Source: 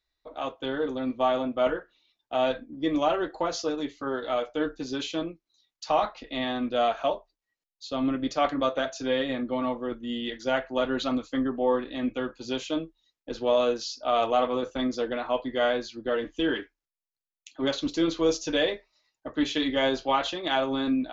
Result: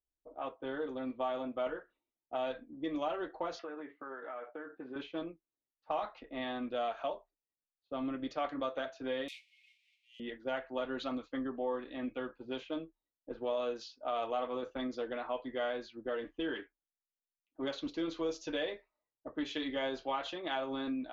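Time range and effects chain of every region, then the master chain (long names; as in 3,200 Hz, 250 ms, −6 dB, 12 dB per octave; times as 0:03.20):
0:03.59–0:04.96: parametric band 1,800 Hz +14.5 dB 1.5 octaves + downward compressor 16 to 1, threshold −31 dBFS + band-pass filter 170–3,600 Hz
0:09.28–0:10.20: spike at every zero crossing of −23 dBFS + Butterworth high-pass 2,200 Hz 96 dB per octave + comb filter 5.1 ms, depth 52%
whole clip: low-pass that shuts in the quiet parts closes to 400 Hz, open at −22.5 dBFS; bass and treble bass −5 dB, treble −7 dB; downward compressor 2 to 1, threshold −29 dBFS; level −6 dB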